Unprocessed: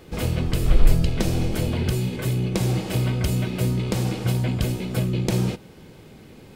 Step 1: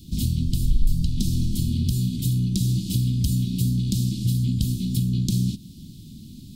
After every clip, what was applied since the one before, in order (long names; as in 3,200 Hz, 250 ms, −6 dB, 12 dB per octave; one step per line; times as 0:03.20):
elliptic band-stop filter 250–3,700 Hz, stop band 40 dB
downward compressor 2 to 1, threshold −29 dBFS, peak gain reduction 12 dB
level +6.5 dB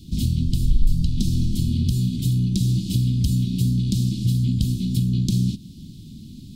high-shelf EQ 8,100 Hz −8.5 dB
level +2 dB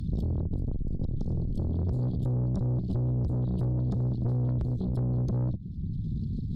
spectral envelope exaggerated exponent 2
tube saturation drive 26 dB, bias 0.7
multiband upward and downward compressor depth 100%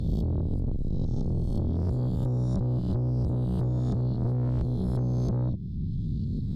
peak hold with a rise ahead of every peak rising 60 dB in 0.94 s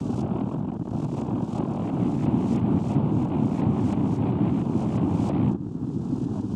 cochlear-implant simulation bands 4
level +4 dB